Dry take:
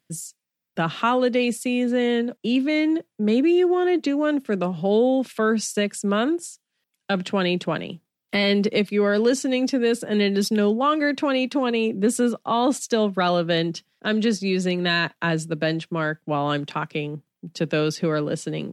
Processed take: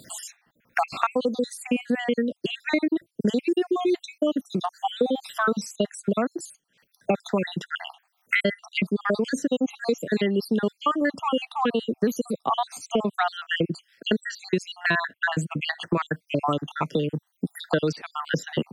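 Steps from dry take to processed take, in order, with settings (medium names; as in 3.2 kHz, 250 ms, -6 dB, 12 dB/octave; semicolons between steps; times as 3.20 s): random holes in the spectrogram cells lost 63%; dynamic bell 3.6 kHz, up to -4 dB, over -45 dBFS, Q 1.8; three bands compressed up and down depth 100%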